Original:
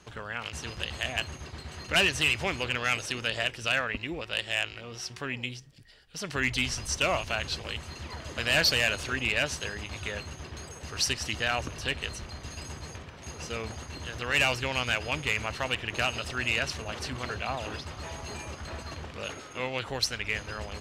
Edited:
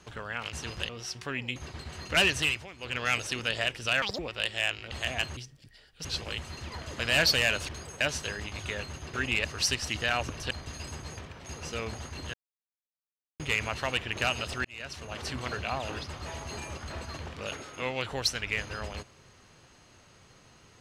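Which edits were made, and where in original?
0.89–1.35 s: swap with 4.84–5.51 s
2.08–2.94 s: dip -16.5 dB, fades 0.38 s equal-power
3.81–4.12 s: speed 186%
6.19–7.43 s: delete
9.07–9.38 s: swap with 10.51–10.83 s
11.89–12.28 s: delete
14.11–15.17 s: mute
16.42–17.09 s: fade in

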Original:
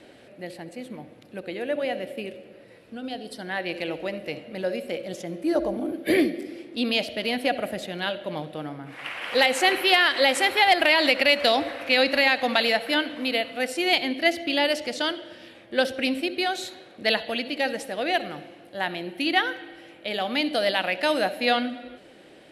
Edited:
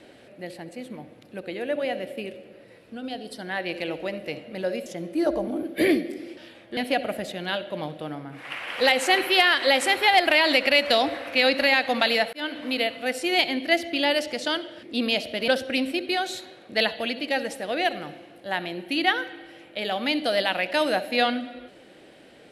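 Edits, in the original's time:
4.86–5.15 s: delete
6.66–7.31 s: swap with 15.37–15.77 s
12.87–13.23 s: fade in equal-power

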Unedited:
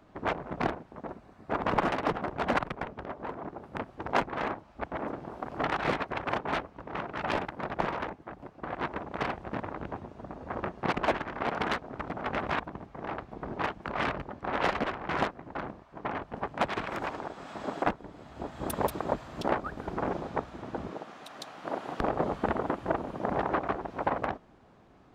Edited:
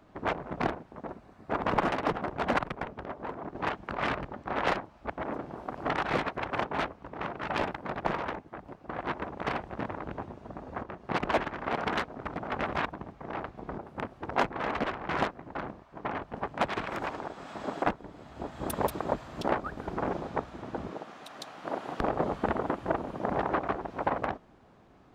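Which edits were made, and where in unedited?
3.55–4.51 s: swap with 13.52–14.74 s
10.57–10.95 s: fade in, from -12 dB

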